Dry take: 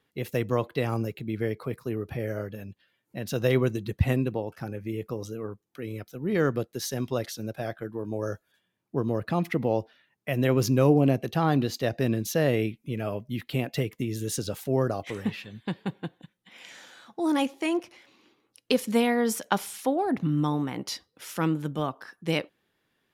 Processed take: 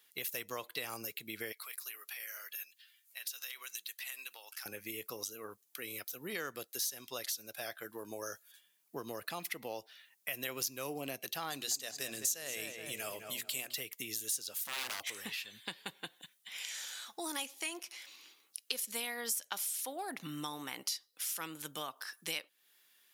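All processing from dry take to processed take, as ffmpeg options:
-filter_complex "[0:a]asettb=1/sr,asplit=3[a][b][c];[a]atrim=end=1.524[d];[b]atrim=start=1.52:end=4.66,asetpts=PTS-STARTPTS,afade=t=in:d=0.004:c=qsin,afade=t=out:st=3.136:d=0.004:c=qsin,highpass=1.5k,acompressor=threshold=-45dB:ratio=6:attack=3.2:release=140:knee=1:detection=peak[e];[c]atrim=start=4.656[f];[d][e]acrossfade=d=0.004:c1=hsin:c2=qsin[g];[g][f]acrossfade=d=0.004:c1=qsin:c2=hsin,asettb=1/sr,asplit=3[h][i][j];[h]atrim=end=11.504[k];[i]atrim=start=11.5:end=13.74,asetpts=PTS-STARTPTS,afade=t=in:d=0.004:c=qsin,afade=t=out:st=2.236:d=0.004:c=qsin,equalizer=f=7.5k:w=1.6:g=14.5,bandreject=f=60:t=h:w=6,bandreject=f=120:t=h:w=6,bandreject=f=180:t=h:w=6,bandreject=f=240:t=h:w=6,bandreject=f=300:t=h:w=6,bandreject=f=360:t=h:w=6,asplit=2[l][m];[m]adelay=211,lowpass=f=2.6k:p=1,volume=-10dB,asplit=2[n][o];[o]adelay=211,lowpass=f=2.6k:p=1,volume=0.46,asplit=2[p][q];[q]adelay=211,lowpass=f=2.6k:p=1,volume=0.46,asplit=2[r][s];[s]adelay=211,lowpass=f=2.6k:p=1,volume=0.46,asplit=2[t][u];[u]adelay=211,lowpass=f=2.6k:p=1,volume=0.46[v];[l][n][p][r][t][v]amix=inputs=6:normalize=0,atrim=end_sample=98784[w];[j]atrim=start=13.736[x];[k][w]acrossfade=d=0.004:c1=hsin:c2=qsin[y];[y][x]acrossfade=d=0.004:c1=qsin:c2=hsin,asettb=1/sr,asplit=3[z][aa][ab];[z]atrim=end=14.664[ac];[aa]atrim=start=14.66:end=15.1,asetpts=PTS-STARTPTS,afade=t=in:d=0.004:c=qsin,afade=t=out:st=0.436:d=0.004:c=qsin,acontrast=39,aeval=exprs='0.0562*(abs(mod(val(0)/0.0562+3,4)-2)-1)':c=same[ad];[ab]atrim=start=15.096[ae];[ac][ad]acrossfade=d=0.004:c1=hsin:c2=qsin[af];[af][ae]acrossfade=d=0.004:c1=qsin:c2=hsin,aderivative,acompressor=threshold=-54dB:ratio=3,volume=14.5dB"

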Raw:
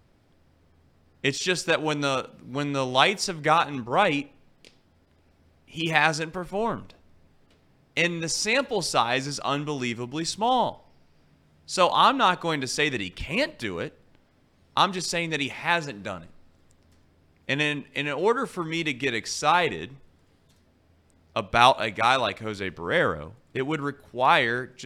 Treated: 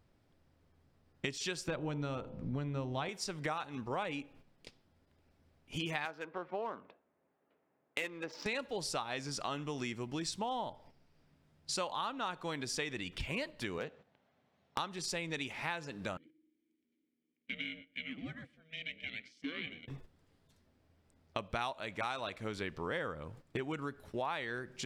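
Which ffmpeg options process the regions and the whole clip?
-filter_complex "[0:a]asettb=1/sr,asplit=3[a][b][c];[a]atrim=end=1.684[d];[b]atrim=start=1.68:end=3.09,asetpts=PTS-STARTPTS,afade=t=in:d=0.004:c=qsin,afade=t=out:st=1.406:d=0.004:c=qsin,aemphasis=mode=reproduction:type=riaa,bandreject=f=56.84:t=h:w=4,bandreject=f=113.68:t=h:w=4,bandreject=f=170.52:t=h:w=4,bandreject=f=227.36:t=h:w=4,bandreject=f=284.2:t=h:w=4,bandreject=f=341.04:t=h:w=4,bandreject=f=397.88:t=h:w=4,bandreject=f=454.72:t=h:w=4,bandreject=f=511.56:t=h:w=4,bandreject=f=568.4:t=h:w=4,bandreject=f=625.24:t=h:w=4,bandreject=f=682.08:t=h:w=4,bandreject=f=738.92:t=h:w=4,bandreject=f=795.76:t=h:w=4,bandreject=f=852.6:t=h:w=4,bandreject=f=909.44:t=h:w=4,bandreject=f=966.28:t=h:w=4,bandreject=f=1.02312k:t=h:w=4[e];[c]atrim=start=3.086[f];[d][e]acrossfade=d=0.004:c1=hsin:c2=qsin[g];[g][f]acrossfade=d=0.004:c1=qsin:c2=hsin,asettb=1/sr,asplit=3[h][i][j];[h]atrim=end=6.054[k];[i]atrim=start=6.05:end=8.46,asetpts=PTS-STARTPTS,afade=t=in:d=0.004:c=qsin,afade=t=out:st=2.406:d=0.004:c=qsin,highpass=360,lowpass=3.1k,adynamicsmooth=sensitivity=4:basefreq=2.1k[l];[j]atrim=start=8.456[m];[k][l]acrossfade=d=0.004:c1=hsin:c2=qsin[n];[n][m]acrossfade=d=0.004:c1=qsin:c2=hsin,asettb=1/sr,asplit=3[o][p][q];[o]atrim=end=13.784[r];[p]atrim=start=13.78:end=14.78,asetpts=PTS-STARTPTS,afade=t=in:d=0.004:c=qsin,afade=t=out:st=0.996:d=0.004:c=qsin,highpass=160,equalizer=f=310:t=q:w=4:g=-9,equalizer=f=720:t=q:w=4:g=6,equalizer=f=5k:t=q:w=4:g=-8,lowpass=f=6.2k:w=0.5412,lowpass=f=6.2k:w=1.3066,asoftclip=type=hard:threshold=-19.5dB[s];[q]atrim=start=14.776[t];[r][s]acrossfade=d=0.004:c1=hsin:c2=qsin[u];[u][t]acrossfade=d=0.004:c1=qsin:c2=hsin,asettb=1/sr,asplit=3[v][w][x];[v]atrim=end=16.174[y];[w]atrim=start=16.17:end=19.88,asetpts=PTS-STARTPTS,afade=t=in:d=0.004:c=qsin,afade=t=out:st=3.706:d=0.004:c=qsin,aeval=exprs='val(0)*sin(2*PI*320*n/s)':c=same,asplit=3[z][aa][ab];[z]bandpass=f=270:t=q:w=8,volume=0dB[ac];[aa]bandpass=f=2.29k:t=q:w=8,volume=-6dB[ad];[ab]bandpass=f=3.01k:t=q:w=8,volume=-9dB[ae];[ac][ad][ae]amix=inputs=3:normalize=0,asplit=2[af][ag];[ag]adelay=120,lowpass=f=2k:p=1,volume=-14dB,asplit=2[ah][ai];[ai]adelay=120,lowpass=f=2k:p=1,volume=0.27,asplit=2[aj][ak];[ak]adelay=120,lowpass=f=2k:p=1,volume=0.27[al];[af][ah][aj][al]amix=inputs=4:normalize=0,atrim=end_sample=163611[am];[x]atrim=start=19.876[an];[y][am]acrossfade=d=0.004:c1=hsin:c2=qsin[ao];[ao][an]acrossfade=d=0.004:c1=qsin:c2=hsin,agate=range=-10dB:threshold=-50dB:ratio=16:detection=peak,acompressor=threshold=-37dB:ratio=6,volume=1dB"

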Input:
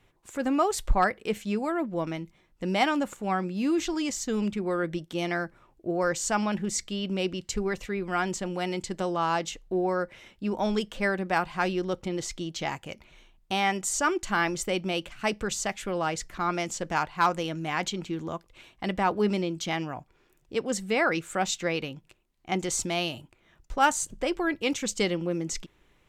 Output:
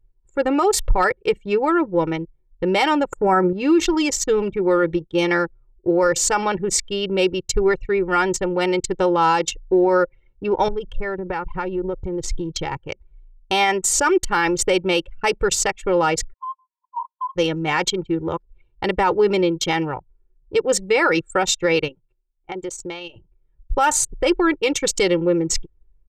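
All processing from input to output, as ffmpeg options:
-filter_complex "[0:a]asettb=1/sr,asplit=3[a][b][c];[a]atrim=end=3.124[d];[b]atrim=start=3.12:end=3.53,asetpts=PTS-STARTPTS,afade=t=in:d=0.004:c=qsin,afade=t=out:st=0.406:d=0.004:c=qsin,acontrast=34,asuperstop=centerf=3500:order=4:qfactor=0.68[e];[c]atrim=start=3.526[f];[d][e]acrossfade=d=0.004:c1=hsin:c2=qsin[g];[g][f]acrossfade=d=0.004:c1=qsin:c2=hsin,asettb=1/sr,asplit=3[h][i][j];[h]atrim=end=10.684[k];[i]atrim=start=10.68:end=12.77,asetpts=PTS-STARTPTS,afade=t=in:d=0.004:c=qsin,afade=t=out:st=2.086:d=0.004:c=qsin,lowshelf=f=120:g=10.5,acompressor=threshold=-30dB:ratio=12:attack=3.2:release=140:knee=1:detection=peak[l];[j]atrim=start=12.766[m];[k][l]acrossfade=d=0.004:c1=hsin:c2=qsin[n];[n][m]acrossfade=d=0.004:c1=qsin:c2=hsin,asettb=1/sr,asplit=3[o][p][q];[o]atrim=end=16.334[r];[p]atrim=start=16.33:end=17.36,asetpts=PTS-STARTPTS,afade=t=in:d=0.004:c=qsin,afade=t=out:st=1.026:d=0.004:c=qsin,agate=range=-33dB:threshold=-33dB:ratio=3:release=100:detection=peak,asuperpass=centerf=1000:order=20:qfactor=6.8,acompressor=threshold=-34dB:ratio=8:attack=3.2:release=140:knee=1:detection=peak[s];[q]atrim=start=17.356[t];[r][s]acrossfade=d=0.004:c1=hsin:c2=qsin[u];[u][t]acrossfade=d=0.004:c1=qsin:c2=hsin,asettb=1/sr,asplit=3[v][w][x];[v]atrim=end=21.884[y];[w]atrim=start=21.88:end=23.16,asetpts=PTS-STARTPTS,afade=t=in:d=0.004:c=qsin,afade=t=out:st=1.276:d=0.004:c=qsin,lowshelf=f=180:g=-10,acompressor=threshold=-34dB:ratio=5:attack=3.2:release=140:knee=1:detection=peak,acrusher=bits=8:mode=log:mix=0:aa=0.000001[z];[x]atrim=start=23.156[aa];[y][z]acrossfade=d=0.004:c1=hsin:c2=qsin[ab];[ab][aa]acrossfade=d=0.004:c1=qsin:c2=hsin,anlmdn=6.31,aecho=1:1:2.2:0.8,alimiter=level_in=17.5dB:limit=-1dB:release=50:level=0:latency=1,volume=-8dB"

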